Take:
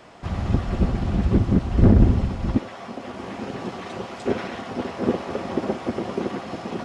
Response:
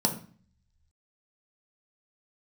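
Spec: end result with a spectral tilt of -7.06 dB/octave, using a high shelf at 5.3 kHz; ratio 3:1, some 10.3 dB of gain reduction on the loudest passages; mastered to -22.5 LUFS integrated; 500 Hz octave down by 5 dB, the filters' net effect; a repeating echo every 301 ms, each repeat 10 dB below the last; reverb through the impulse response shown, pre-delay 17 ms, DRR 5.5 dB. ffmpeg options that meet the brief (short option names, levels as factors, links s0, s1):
-filter_complex "[0:a]equalizer=f=500:t=o:g=-7,highshelf=f=5300:g=4.5,acompressor=threshold=0.0631:ratio=3,aecho=1:1:301|602|903|1204:0.316|0.101|0.0324|0.0104,asplit=2[s0][s1];[1:a]atrim=start_sample=2205,adelay=17[s2];[s1][s2]afir=irnorm=-1:irlink=0,volume=0.188[s3];[s0][s3]amix=inputs=2:normalize=0,volume=1.58"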